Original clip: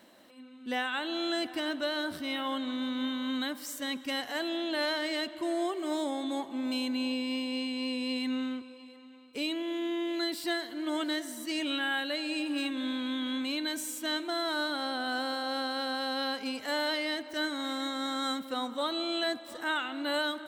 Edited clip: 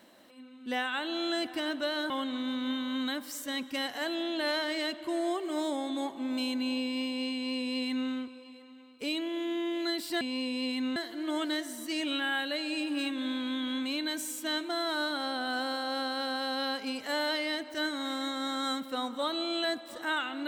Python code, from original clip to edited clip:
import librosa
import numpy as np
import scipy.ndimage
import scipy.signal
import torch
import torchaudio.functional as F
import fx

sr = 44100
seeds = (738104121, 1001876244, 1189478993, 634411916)

y = fx.edit(x, sr, fx.cut(start_s=2.1, length_s=0.34),
    fx.duplicate(start_s=7.68, length_s=0.75, to_s=10.55), tone=tone)